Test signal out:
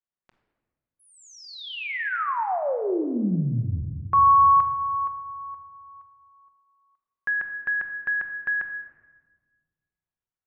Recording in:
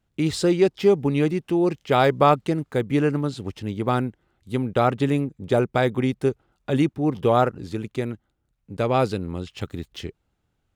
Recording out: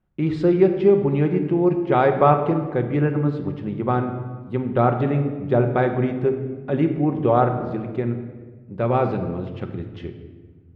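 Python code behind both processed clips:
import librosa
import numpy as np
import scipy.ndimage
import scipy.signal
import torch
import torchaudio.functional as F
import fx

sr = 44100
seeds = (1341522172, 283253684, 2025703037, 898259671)

y = scipy.signal.sosfilt(scipy.signal.butter(2, 1800.0, 'lowpass', fs=sr, output='sos'), x)
y = fx.room_shoebox(y, sr, seeds[0], volume_m3=1300.0, walls='mixed', distance_m=1.0)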